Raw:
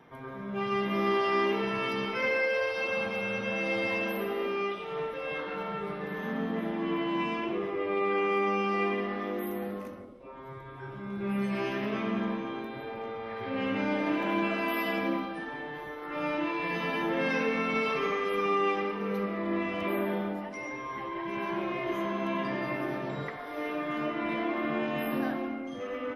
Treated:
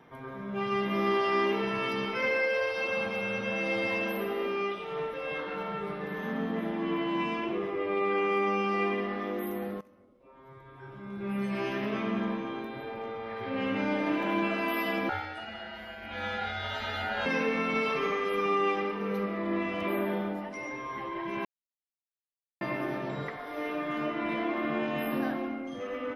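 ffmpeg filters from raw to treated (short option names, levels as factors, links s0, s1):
-filter_complex "[0:a]asettb=1/sr,asplit=3[s0][s1][s2];[s0]atrim=end=15.094[s3];[s1]atrim=start=15.09:end=17.26,asetpts=PTS-STARTPTS,afade=t=in:d=0.004:c=qsin,afade=t=out:st=2.166:d=0.004:c=qsin,aeval=exprs='val(0)*sin(2*PI*1100*n/s)':c=same[s4];[s2]atrim=start=17.256[s5];[s3][s4]acrossfade=d=0.004:c1=hsin:c2=qsin[s6];[s6][s5]acrossfade=d=0.004:c1=qsin:c2=hsin,asplit=4[s7][s8][s9][s10];[s7]atrim=end=9.81,asetpts=PTS-STARTPTS,afade=t=out:st=9.806:d=0.004:c=hsin:silence=0.1[s11];[s8]atrim=start=9.81:end=21.45,asetpts=PTS-STARTPTS,afade=t=in:d=1.95:silence=0.1,afade=t=out:st=11.636:d=0.004:c=hsin[s12];[s9]atrim=start=21.45:end=22.61,asetpts=PTS-STARTPTS,volume=0[s13];[s10]atrim=start=22.61,asetpts=PTS-STARTPTS,afade=t=in:d=0.004:c=hsin[s14];[s11][s12][s13][s14]concat=n=4:v=0:a=1"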